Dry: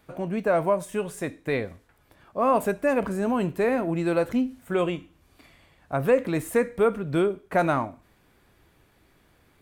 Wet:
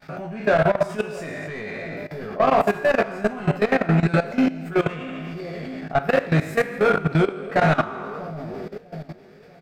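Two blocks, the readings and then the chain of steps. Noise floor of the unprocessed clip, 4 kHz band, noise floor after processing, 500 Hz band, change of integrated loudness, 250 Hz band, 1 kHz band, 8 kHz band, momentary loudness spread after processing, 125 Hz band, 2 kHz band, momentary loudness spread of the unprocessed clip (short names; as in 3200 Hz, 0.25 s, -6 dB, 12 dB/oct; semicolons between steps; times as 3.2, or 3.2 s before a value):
-62 dBFS, +7.0 dB, -48 dBFS, +2.5 dB, +3.0 dB, +3.0 dB, +4.5 dB, n/a, 14 LU, +9.0 dB, +8.0 dB, 9 LU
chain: spectral trails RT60 0.80 s; thirty-one-band EQ 160 Hz +10 dB, 315 Hz -8 dB, 500 Hz -9 dB, 1000 Hz -12 dB, 3150 Hz -4 dB, 5000 Hz +9 dB, 10000 Hz -9 dB; in parallel at +1.5 dB: compressor 4:1, threshold -35 dBFS, peak gain reduction 15 dB; on the sum: overdrive pedal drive 20 dB, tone 1400 Hz, clips at -8.5 dBFS; vibrato 1.2 Hz 24 cents; doubler 19 ms -4.5 dB; on a send: split-band echo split 660 Hz, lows 0.644 s, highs 0.115 s, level -9 dB; on the sum: level quantiser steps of 16 dB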